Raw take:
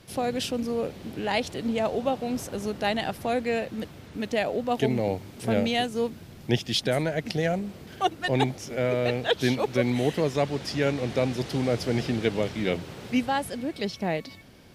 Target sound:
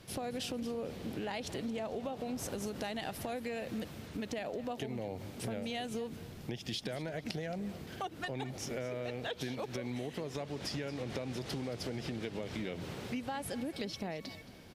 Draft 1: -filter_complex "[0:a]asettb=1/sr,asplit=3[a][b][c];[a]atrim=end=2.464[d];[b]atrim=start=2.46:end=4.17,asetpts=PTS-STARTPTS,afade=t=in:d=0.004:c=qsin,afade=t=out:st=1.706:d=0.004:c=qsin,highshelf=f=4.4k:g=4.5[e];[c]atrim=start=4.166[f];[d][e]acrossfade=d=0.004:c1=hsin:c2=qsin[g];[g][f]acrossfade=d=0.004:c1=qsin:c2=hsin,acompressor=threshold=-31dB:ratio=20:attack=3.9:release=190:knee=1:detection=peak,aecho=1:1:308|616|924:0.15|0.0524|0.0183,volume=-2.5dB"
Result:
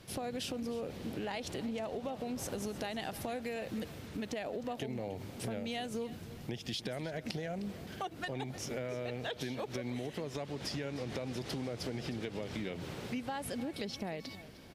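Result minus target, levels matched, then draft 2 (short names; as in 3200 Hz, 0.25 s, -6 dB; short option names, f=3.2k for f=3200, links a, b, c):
echo 85 ms late
-filter_complex "[0:a]asettb=1/sr,asplit=3[a][b][c];[a]atrim=end=2.464[d];[b]atrim=start=2.46:end=4.17,asetpts=PTS-STARTPTS,afade=t=in:d=0.004:c=qsin,afade=t=out:st=1.706:d=0.004:c=qsin,highshelf=f=4.4k:g=4.5[e];[c]atrim=start=4.166[f];[d][e]acrossfade=d=0.004:c1=hsin:c2=qsin[g];[g][f]acrossfade=d=0.004:c1=qsin:c2=hsin,acompressor=threshold=-31dB:ratio=20:attack=3.9:release=190:knee=1:detection=peak,aecho=1:1:223|446|669:0.15|0.0524|0.0183,volume=-2.5dB"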